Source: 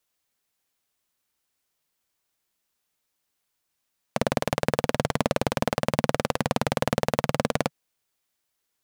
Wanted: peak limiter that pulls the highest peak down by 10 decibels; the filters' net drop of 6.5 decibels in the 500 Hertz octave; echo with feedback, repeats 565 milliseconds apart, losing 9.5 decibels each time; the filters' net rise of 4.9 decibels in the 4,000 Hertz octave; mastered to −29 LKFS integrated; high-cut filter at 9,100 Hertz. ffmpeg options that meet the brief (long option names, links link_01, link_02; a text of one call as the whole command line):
ffmpeg -i in.wav -af "lowpass=9100,equalizer=frequency=500:width_type=o:gain=-8,equalizer=frequency=4000:width_type=o:gain=6.5,alimiter=limit=-12.5dB:level=0:latency=1,aecho=1:1:565|1130|1695|2260:0.335|0.111|0.0365|0.012,volume=8dB" out.wav